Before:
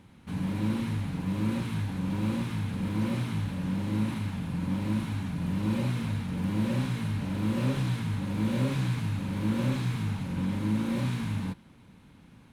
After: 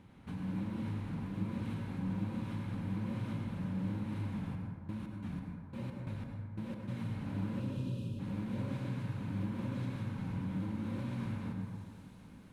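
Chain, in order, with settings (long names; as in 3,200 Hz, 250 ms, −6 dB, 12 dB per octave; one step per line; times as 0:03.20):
high-shelf EQ 3,500 Hz −7.5 dB
delay with a high-pass on its return 997 ms, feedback 76%, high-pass 5,600 Hz, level −15 dB
downward compressor 4 to 1, threshold −36 dBFS, peak gain reduction 11.5 dB
0:04.54–0:06.87: gate pattern "..xx....xx" 178 BPM −24 dB
0:07.60–0:08.19: time-frequency box erased 600–2,400 Hz
dense smooth reverb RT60 2 s, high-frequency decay 0.3×, pre-delay 85 ms, DRR 1 dB
level −3 dB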